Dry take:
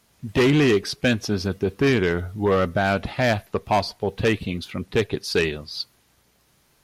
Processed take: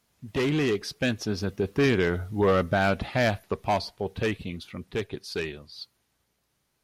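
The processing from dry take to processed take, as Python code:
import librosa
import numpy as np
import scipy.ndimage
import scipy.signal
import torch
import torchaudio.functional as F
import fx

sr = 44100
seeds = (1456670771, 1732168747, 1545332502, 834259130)

y = fx.doppler_pass(x, sr, speed_mps=8, closest_m=9.9, pass_at_s=2.53)
y = y * librosa.db_to_amplitude(-2.0)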